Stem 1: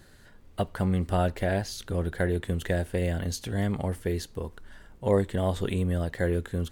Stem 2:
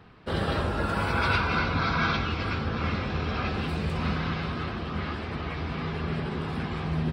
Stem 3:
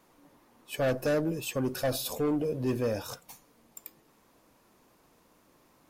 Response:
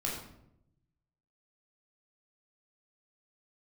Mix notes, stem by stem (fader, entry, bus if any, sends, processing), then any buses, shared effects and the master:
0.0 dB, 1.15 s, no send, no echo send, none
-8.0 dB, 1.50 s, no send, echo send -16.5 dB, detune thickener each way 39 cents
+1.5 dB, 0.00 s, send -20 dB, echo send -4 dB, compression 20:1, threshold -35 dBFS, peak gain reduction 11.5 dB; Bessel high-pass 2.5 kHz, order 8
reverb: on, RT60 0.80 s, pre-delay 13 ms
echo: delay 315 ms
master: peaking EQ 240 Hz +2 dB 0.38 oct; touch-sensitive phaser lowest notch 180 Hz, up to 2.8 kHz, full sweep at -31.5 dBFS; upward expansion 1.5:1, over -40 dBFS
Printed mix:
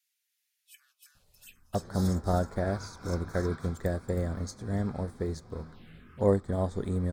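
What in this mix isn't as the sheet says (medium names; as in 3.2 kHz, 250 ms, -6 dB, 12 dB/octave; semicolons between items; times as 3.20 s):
nothing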